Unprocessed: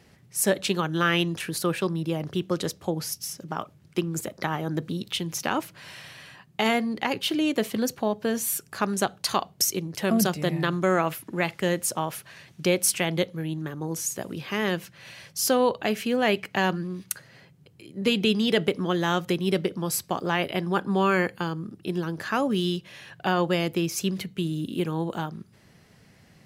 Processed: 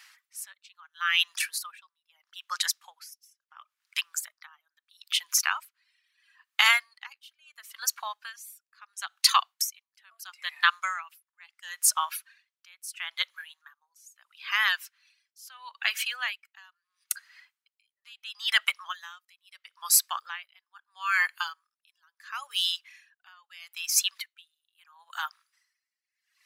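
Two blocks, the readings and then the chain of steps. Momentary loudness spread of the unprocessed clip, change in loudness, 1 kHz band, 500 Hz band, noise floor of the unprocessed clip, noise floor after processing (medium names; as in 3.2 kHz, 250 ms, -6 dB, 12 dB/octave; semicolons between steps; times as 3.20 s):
11 LU, -0.5 dB, -4.5 dB, -32.5 dB, -57 dBFS, under -85 dBFS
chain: reverb removal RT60 2 s; steep high-pass 1.1 kHz 36 dB/octave; logarithmic tremolo 0.75 Hz, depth 33 dB; trim +9 dB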